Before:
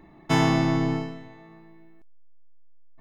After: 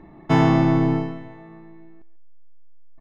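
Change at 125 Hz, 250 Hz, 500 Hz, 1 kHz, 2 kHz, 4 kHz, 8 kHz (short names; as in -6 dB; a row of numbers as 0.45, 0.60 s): +5.0 dB, +5.0 dB, +4.5 dB, +3.5 dB, +0.5 dB, -3.5 dB, n/a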